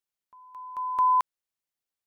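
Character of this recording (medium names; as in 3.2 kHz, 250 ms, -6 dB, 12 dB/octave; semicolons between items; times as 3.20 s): noise floor -91 dBFS; spectral tilt -3.0 dB/octave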